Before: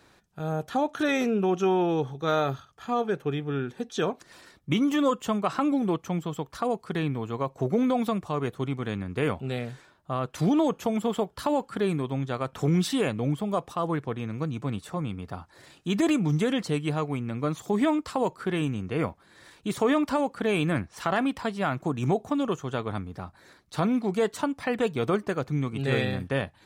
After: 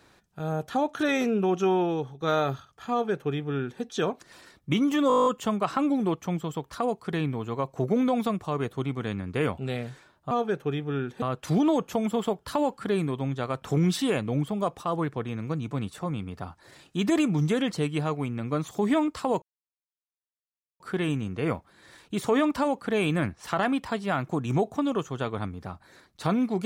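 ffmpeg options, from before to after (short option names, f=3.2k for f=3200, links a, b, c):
-filter_complex "[0:a]asplit=14[a][b][c][d][e][f][g][h][i][j][k][l][m][n];[a]atrim=end=2.21,asetpts=PTS-STARTPTS,afade=t=out:st=1.76:d=0.45:silence=0.398107[o];[b]atrim=start=2.21:end=5.102,asetpts=PTS-STARTPTS,afade=t=in:d=0.004:c=hsin:silence=0.398107[p];[c]atrim=start=5.078:end=5.102[q];[d]atrim=start=5.078:end=5.102[r];[e]atrim=start=5.078:end=5.102[s];[f]atrim=start=5.078:end=5.102[t];[g]atrim=start=5.078:end=5.102[u];[h]atrim=start=5.078:end=5.102[v];[i]atrim=start=5.078:end=5.102[w];[j]atrim=start=5.078:end=5.102[x];[k]atrim=start=5.078:end=10.132[y];[l]atrim=start=2.908:end=3.822[z];[m]atrim=start=10.128:end=18.33,asetpts=PTS-STARTPTS,afade=t=out:st=8.198:d=0.004:c=hsin,apad=pad_dur=1.38[aa];[n]atrim=start=18.33,asetpts=PTS-STARTPTS,afade=t=in:d=0.004:c=hsin[ab];[o][p]concat=n=2:v=0:a=1[ac];[ac][q]acrossfade=d=0.004:c1=hsin:c2=hsin[ad];[ad][r]acrossfade=d=0.004:c1=hsin:c2=hsin[ae];[ae][s]acrossfade=d=0.004:c1=hsin:c2=hsin[af];[af][t]acrossfade=d=0.004:c1=hsin:c2=hsin[ag];[ag][u]acrossfade=d=0.004:c1=hsin:c2=hsin[ah];[ah][v]acrossfade=d=0.004:c1=hsin:c2=hsin[ai];[ai][w]acrossfade=d=0.004:c1=hsin:c2=hsin[aj];[aj][x]acrossfade=d=0.004:c1=hsin:c2=hsin[ak];[ak][y]acrossfade=d=0.004:c1=hsin:c2=hsin[al];[al][z]acrossfade=d=0.004:c1=hsin:c2=hsin[am];[aa][ab]concat=n=2:v=0:a=1[an];[am][an]acrossfade=d=0.004:c1=hsin:c2=hsin"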